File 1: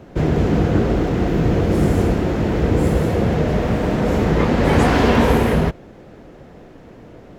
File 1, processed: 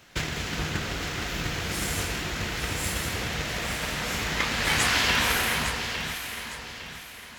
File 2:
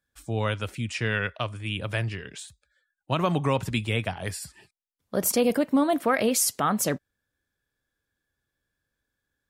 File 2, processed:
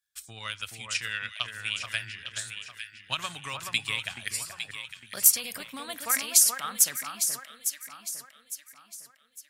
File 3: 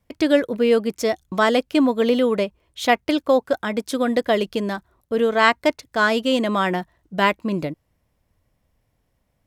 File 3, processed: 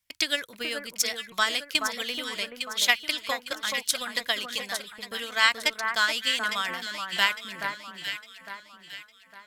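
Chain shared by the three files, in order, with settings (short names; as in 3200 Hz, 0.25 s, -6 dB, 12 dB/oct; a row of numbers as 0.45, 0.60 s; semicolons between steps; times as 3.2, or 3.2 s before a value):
tilt shelf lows -8.5 dB, about 910 Hz; transient shaper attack +9 dB, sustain +5 dB; passive tone stack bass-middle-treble 5-5-5; on a send: echo with dull and thin repeats by turns 0.428 s, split 1700 Hz, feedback 61%, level -4 dB; on the sum: match loudness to -27 LUFS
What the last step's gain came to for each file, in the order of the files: +4.0, -1.0, -1.0 dB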